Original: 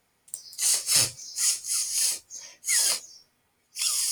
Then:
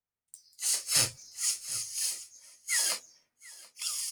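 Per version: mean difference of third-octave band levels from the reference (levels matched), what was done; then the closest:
3.5 dB: parametric band 1,600 Hz +3 dB 0.77 octaves
notch filter 1,100 Hz, Q 28
on a send: single-tap delay 728 ms −12.5 dB
on the sum: multiband upward and downward expander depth 70%
level −7.5 dB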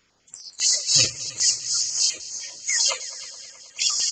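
8.5 dB: spectral magnitudes quantised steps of 30 dB
echo machine with several playback heads 106 ms, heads all three, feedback 65%, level −21.5 dB
downsampling to 16,000 Hz
notch on a step sequencer 10 Hz 760–5,200 Hz
level +8 dB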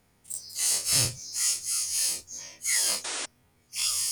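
5.0 dB: every bin's largest magnitude spread in time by 60 ms
low-shelf EQ 300 Hz +12 dB
in parallel at −2 dB: downward compressor, threshold −28 dBFS, peak gain reduction 14.5 dB
on the sum: sound drawn into the spectrogram noise, 0:03.04–0:03.26, 250–9,800 Hz −25 dBFS
level −8 dB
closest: first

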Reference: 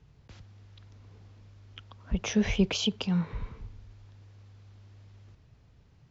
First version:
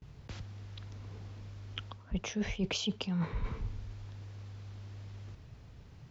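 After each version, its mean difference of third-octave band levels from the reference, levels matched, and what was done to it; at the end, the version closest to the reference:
8.0 dB: reversed playback
downward compressor 10 to 1, threshold −37 dBFS, peak gain reduction 19 dB
reversed playback
noise gate with hold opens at −56 dBFS
level +6.5 dB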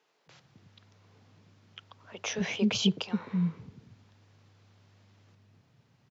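2.5 dB: high-pass filter 130 Hz 24 dB per octave
multiband delay without the direct sound highs, lows 260 ms, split 370 Hz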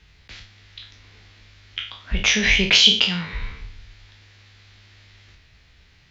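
5.5 dB: peak hold with a decay on every bin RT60 0.44 s
graphic EQ with 10 bands 125 Hz −11 dB, 250 Hz −5 dB, 500 Hz −5 dB, 1,000 Hz −4 dB, 2,000 Hz +10 dB, 4,000 Hz +9 dB
level +7 dB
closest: second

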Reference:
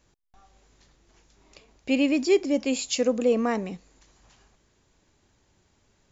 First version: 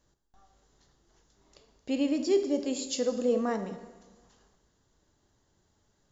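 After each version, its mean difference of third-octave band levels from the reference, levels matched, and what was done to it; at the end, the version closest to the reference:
3.0 dB: parametric band 2,400 Hz −12 dB 0.33 octaves
dense smooth reverb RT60 1.3 s, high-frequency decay 0.85×, DRR 7.5 dB
level −5.5 dB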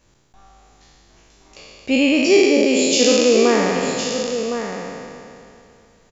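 7.5 dB: peak hold with a decay on every bin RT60 2.59 s
single-tap delay 1,062 ms −8.5 dB
level +4.5 dB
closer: first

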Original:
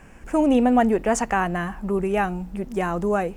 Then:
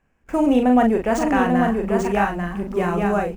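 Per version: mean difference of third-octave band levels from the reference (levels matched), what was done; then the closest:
5.0 dB: running median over 5 samples
noise gate with hold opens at −30 dBFS
double-tracking delay 40 ms −5 dB
on a send: single-tap delay 841 ms −4 dB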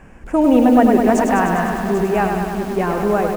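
6.5 dB: high-shelf EQ 2,700 Hz −8.5 dB
on a send: single-tap delay 790 ms −14 dB
on the sum: feedback echo at a low word length 101 ms, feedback 80%, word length 7 bits, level −5 dB
level +4.5 dB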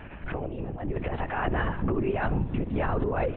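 11.0 dB: compressor whose output falls as the input rises −24 dBFS, ratio −0.5
brickwall limiter −19 dBFS, peak gain reduction 7.5 dB
repeating echo 67 ms, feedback 53%, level −19.5 dB
linear-prediction vocoder at 8 kHz whisper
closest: first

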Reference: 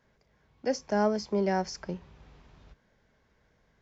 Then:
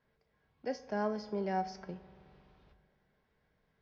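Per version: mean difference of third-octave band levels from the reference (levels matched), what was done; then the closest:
3.0 dB: low-pass filter 4,900 Hz 24 dB per octave
mains-hum notches 50/100/150 Hz
tuned comb filter 150 Hz, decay 0.37 s, harmonics odd, mix 70%
spring reverb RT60 2.6 s, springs 42 ms, chirp 45 ms, DRR 15.5 dB
level +1.5 dB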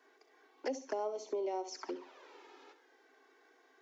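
9.0 dB: flanger swept by the level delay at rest 2.7 ms, full sweep at −27.5 dBFS
Chebyshev high-pass with heavy ripple 260 Hz, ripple 3 dB
flutter between parallel walls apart 11.4 metres, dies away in 0.31 s
downward compressor 4 to 1, threshold −46 dBFS, peak gain reduction 17 dB
level +9 dB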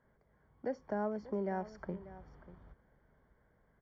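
5.5 dB: loose part that buzzes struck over −38 dBFS, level −39 dBFS
Savitzky-Golay smoothing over 41 samples
downward compressor 2 to 1, threshold −35 dBFS, peak gain reduction 8 dB
single-tap delay 590 ms −16 dB
level −2.5 dB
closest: first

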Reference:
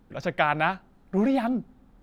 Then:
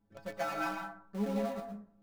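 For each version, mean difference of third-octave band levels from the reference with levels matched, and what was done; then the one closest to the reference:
9.5 dB: running median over 15 samples
stiff-string resonator 100 Hz, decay 0.38 s, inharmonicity 0.008
in parallel at −9.5 dB: bit reduction 6 bits
on the sum: dense smooth reverb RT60 0.53 s, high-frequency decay 0.45×, pre-delay 100 ms, DRR 3 dB
level −4.5 dB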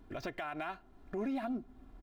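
5.0 dB: running median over 5 samples
comb filter 2.9 ms, depth 66%
downward compressor 2 to 1, threshold −38 dBFS, peak gain reduction 12.5 dB
brickwall limiter −28.5 dBFS, peak gain reduction 11 dB
level −1 dB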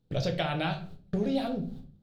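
7.0 dB: noise gate −50 dBFS, range −23 dB
graphic EQ with 10 bands 125 Hz +11 dB, 250 Hz −6 dB, 500 Hz +5 dB, 1,000 Hz −9 dB, 2,000 Hz −7 dB, 4,000 Hz +12 dB
downward compressor 6 to 1, threshold −35 dBFS, peak gain reduction 15.5 dB
rectangular room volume 35 cubic metres, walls mixed, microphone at 0.4 metres
level +6 dB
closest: second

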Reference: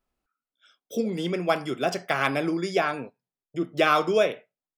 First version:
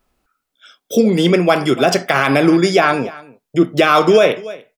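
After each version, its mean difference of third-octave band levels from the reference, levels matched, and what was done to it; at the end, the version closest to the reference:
3.0 dB: single-tap delay 291 ms −22.5 dB
boost into a limiter +16 dB
level −1 dB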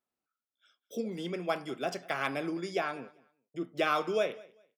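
1.0 dB: high-pass filter 140 Hz
on a send: repeating echo 197 ms, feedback 22%, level −22.5 dB
on the sum: level −8 dB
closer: second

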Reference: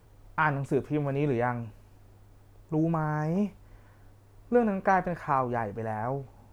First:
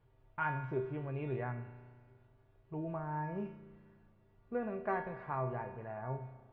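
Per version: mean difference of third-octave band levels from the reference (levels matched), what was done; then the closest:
5.5 dB: low-pass filter 3,400 Hz 24 dB per octave
tuned comb filter 130 Hz, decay 0.59 s, harmonics odd, mix 90%
spring reverb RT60 1.9 s, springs 33 ms, chirp 20 ms, DRR 12.5 dB
level +4 dB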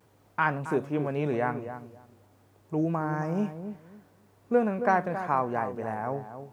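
3.0 dB: pitch vibrato 0.34 Hz 19 cents
high-pass filter 150 Hz 12 dB per octave
on a send: feedback echo with a low-pass in the loop 271 ms, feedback 21%, low-pass 1,100 Hz, level −9 dB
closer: second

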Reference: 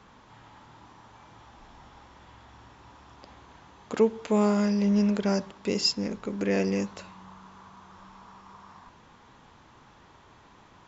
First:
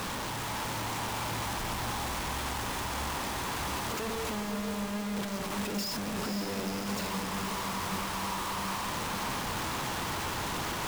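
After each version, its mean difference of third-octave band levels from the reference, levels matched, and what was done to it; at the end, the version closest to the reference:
21.0 dB: sign of each sample alone
feedback delay with all-pass diffusion 523 ms, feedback 59%, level −5.5 dB
level −4.5 dB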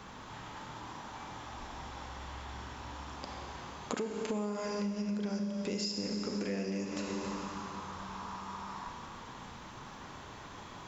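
11.5 dB: brickwall limiter −21.5 dBFS, peak gain reduction 9.5 dB
high-shelf EQ 5,300 Hz +6 dB
four-comb reverb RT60 2.4 s, combs from 30 ms, DRR 3 dB
downward compressor 16 to 1, threshold −37 dBFS, peak gain reduction 17.5 dB
level +5 dB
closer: second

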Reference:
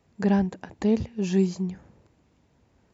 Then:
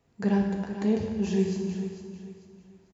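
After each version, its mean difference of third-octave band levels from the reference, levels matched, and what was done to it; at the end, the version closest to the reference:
5.5 dB: repeating echo 446 ms, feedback 32%, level −10.5 dB
reverb whose tail is shaped and stops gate 420 ms falling, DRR 1 dB
level −4.5 dB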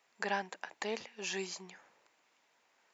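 10.0 dB: high-pass filter 930 Hz 12 dB per octave
parametric band 2,200 Hz +2.5 dB 0.77 octaves
level +1 dB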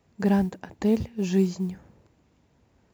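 1.0 dB: noise that follows the level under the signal 34 dB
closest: third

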